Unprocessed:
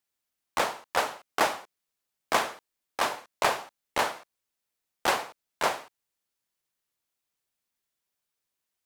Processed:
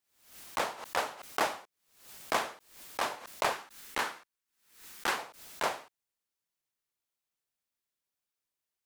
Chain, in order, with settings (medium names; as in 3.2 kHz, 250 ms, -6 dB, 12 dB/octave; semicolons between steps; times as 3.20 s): 3.53–5.18 s: fifteen-band graphic EQ 100 Hz -10 dB, 630 Hz -8 dB, 1.6 kHz +3 dB; swell ahead of each attack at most 98 dB/s; trim -5.5 dB